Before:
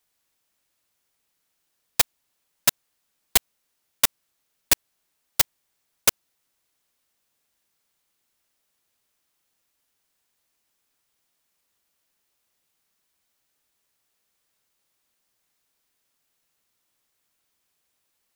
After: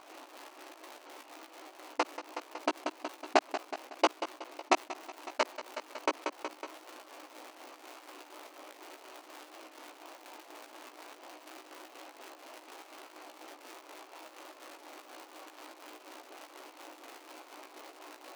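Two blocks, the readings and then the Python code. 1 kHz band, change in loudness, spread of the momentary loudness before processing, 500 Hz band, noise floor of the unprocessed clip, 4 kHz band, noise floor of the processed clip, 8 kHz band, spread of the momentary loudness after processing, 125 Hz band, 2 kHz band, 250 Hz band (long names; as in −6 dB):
+5.0 dB, −16.5 dB, 2 LU, +6.0 dB, −75 dBFS, −11.5 dB, −56 dBFS, −19.5 dB, 19 LU, below −35 dB, −4.5 dB, +5.0 dB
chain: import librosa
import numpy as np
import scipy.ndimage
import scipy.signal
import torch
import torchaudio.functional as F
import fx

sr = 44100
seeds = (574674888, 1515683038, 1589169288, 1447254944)

y = scipy.signal.medfilt(x, 25)
y = scipy.signal.sosfilt(scipy.signal.butter(4, 6900.0, 'lowpass', fs=sr, output='sos'), y)
y = fx.peak_eq(y, sr, hz=450.0, db=-9.0, octaves=0.41)
y = fx.dmg_crackle(y, sr, seeds[0], per_s=240.0, level_db=-70.0)
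y = fx.echo_feedback(y, sr, ms=185, feedback_pct=43, wet_db=-22.5)
y = fx.volume_shaper(y, sr, bpm=124, per_beat=2, depth_db=-13, release_ms=94.0, shape='slow start')
y = fx.brickwall_highpass(y, sr, low_hz=270.0)
y = fx.high_shelf(y, sr, hz=3000.0, db=-8.5)
y = fx.doubler(y, sr, ms=16.0, db=-6)
y = fx.env_flatten(y, sr, amount_pct=50)
y = y * librosa.db_to_amplitude(9.5)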